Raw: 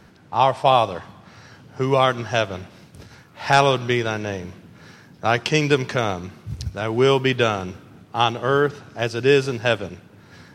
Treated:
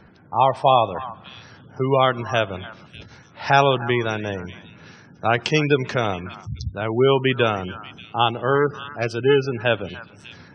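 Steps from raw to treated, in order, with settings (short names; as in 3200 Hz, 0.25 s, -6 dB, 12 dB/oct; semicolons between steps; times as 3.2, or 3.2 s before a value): 8.55–9.58 self-modulated delay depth 0.14 ms; delay with a stepping band-pass 0.295 s, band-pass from 1200 Hz, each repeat 1.4 oct, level -12 dB; spectral gate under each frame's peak -25 dB strong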